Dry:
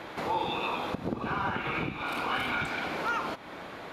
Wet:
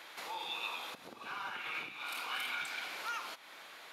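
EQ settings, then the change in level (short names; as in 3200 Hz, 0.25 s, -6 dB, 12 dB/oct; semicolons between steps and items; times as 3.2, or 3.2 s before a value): differentiator; high shelf 5300 Hz -5.5 dB; +5.5 dB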